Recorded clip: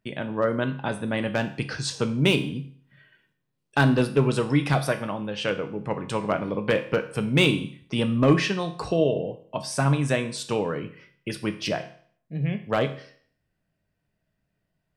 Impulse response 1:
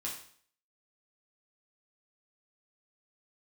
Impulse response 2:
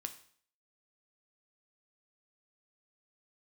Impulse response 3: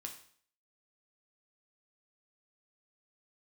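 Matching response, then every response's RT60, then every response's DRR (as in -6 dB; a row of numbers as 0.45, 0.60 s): 2; 0.55, 0.55, 0.55 s; -4.5, 7.0, 2.0 dB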